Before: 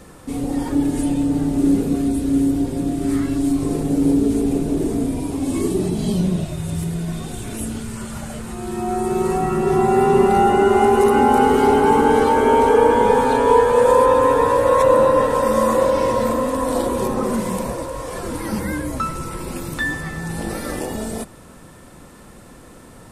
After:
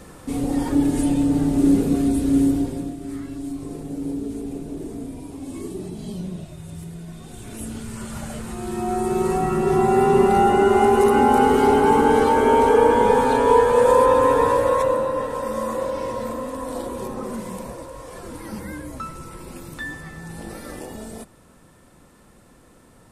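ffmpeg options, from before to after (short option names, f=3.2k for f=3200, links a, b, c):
-af "volume=10dB,afade=t=out:st=2.46:d=0.51:silence=0.266073,afade=t=in:st=7.18:d=1.06:silence=0.316228,afade=t=out:st=14.49:d=0.54:silence=0.421697"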